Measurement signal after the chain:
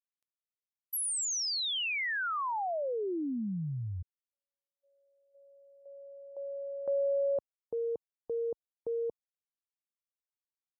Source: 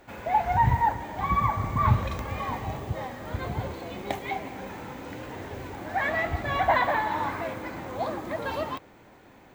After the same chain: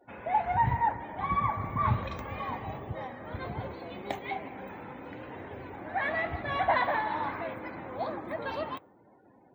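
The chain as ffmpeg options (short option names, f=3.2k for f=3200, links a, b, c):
-af "highpass=f=110:p=1,afftdn=nr=27:nf=-51,volume=-3.5dB"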